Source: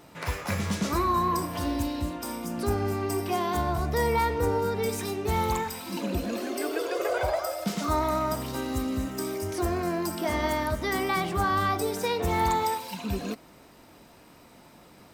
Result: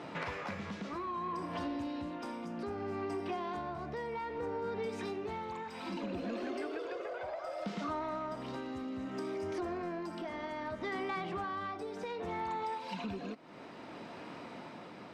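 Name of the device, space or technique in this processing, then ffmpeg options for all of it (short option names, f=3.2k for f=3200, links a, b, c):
AM radio: -af "highpass=160,lowpass=3.3k,acompressor=threshold=-43dB:ratio=6,asoftclip=type=tanh:threshold=-36dB,tremolo=f=0.63:d=0.34,volume=8dB"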